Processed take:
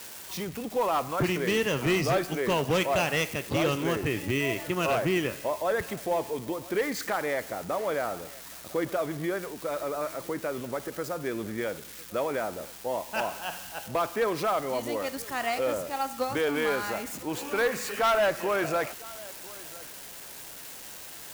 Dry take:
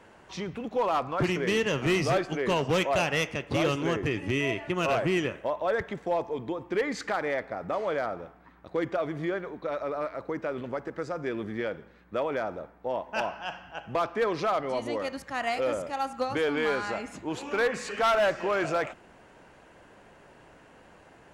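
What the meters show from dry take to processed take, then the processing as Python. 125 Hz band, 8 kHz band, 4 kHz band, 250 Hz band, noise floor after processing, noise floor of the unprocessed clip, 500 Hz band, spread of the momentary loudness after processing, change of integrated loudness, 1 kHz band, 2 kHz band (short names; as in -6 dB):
0.0 dB, +6.5 dB, +1.0 dB, 0.0 dB, -44 dBFS, -55 dBFS, 0.0 dB, 14 LU, 0.0 dB, 0.0 dB, 0.0 dB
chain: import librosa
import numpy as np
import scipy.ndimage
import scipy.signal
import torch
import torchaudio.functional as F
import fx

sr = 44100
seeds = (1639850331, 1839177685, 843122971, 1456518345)

y = x + 0.5 * 10.0 ** (-31.0 / 20.0) * np.diff(np.sign(x), prepend=np.sign(x[:1]))
y = y + 10.0 ** (-21.5 / 20.0) * np.pad(y, (int(1004 * sr / 1000.0), 0))[:len(y)]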